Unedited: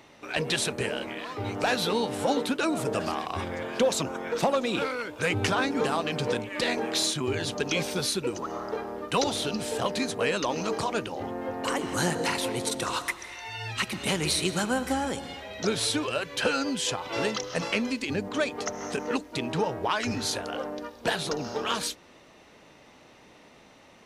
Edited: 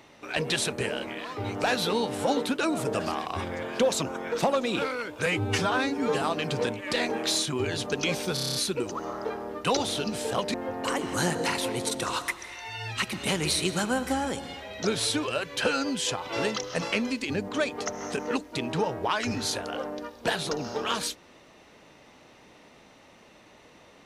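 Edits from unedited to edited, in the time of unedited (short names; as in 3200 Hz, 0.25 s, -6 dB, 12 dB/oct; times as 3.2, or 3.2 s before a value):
5.26–5.9 stretch 1.5×
8.02 stutter 0.03 s, 8 plays
10.01–11.34 cut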